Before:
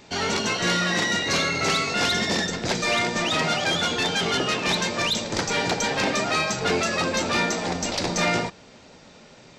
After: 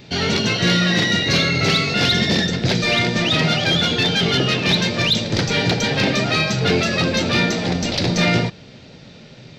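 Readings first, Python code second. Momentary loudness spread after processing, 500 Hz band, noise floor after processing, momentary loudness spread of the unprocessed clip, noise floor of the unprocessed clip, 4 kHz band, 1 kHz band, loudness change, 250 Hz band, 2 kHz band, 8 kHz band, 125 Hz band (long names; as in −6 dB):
3 LU, +4.0 dB, −42 dBFS, 3 LU, −49 dBFS, +6.5 dB, 0.0 dB, +5.5 dB, +8.5 dB, +4.0 dB, −1.0 dB, +12.0 dB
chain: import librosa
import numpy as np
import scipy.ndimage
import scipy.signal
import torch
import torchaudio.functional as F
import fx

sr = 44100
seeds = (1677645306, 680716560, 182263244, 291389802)

y = fx.graphic_eq(x, sr, hz=(125, 1000, 4000, 8000), db=(10, -8, 5, -12))
y = y * 10.0 ** (5.5 / 20.0)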